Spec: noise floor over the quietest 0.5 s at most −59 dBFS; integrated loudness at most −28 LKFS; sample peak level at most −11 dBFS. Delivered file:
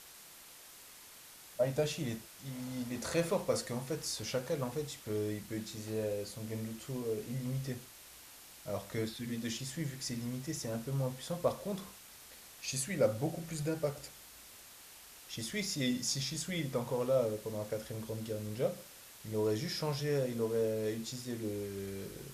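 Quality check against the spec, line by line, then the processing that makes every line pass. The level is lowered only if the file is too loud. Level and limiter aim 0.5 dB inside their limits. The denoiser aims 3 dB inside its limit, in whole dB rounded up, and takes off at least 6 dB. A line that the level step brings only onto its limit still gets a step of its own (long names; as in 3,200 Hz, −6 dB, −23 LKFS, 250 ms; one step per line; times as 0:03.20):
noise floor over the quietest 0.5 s −55 dBFS: out of spec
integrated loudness −37.0 LKFS: in spec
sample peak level −17.0 dBFS: in spec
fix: broadband denoise 7 dB, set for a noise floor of −55 dBFS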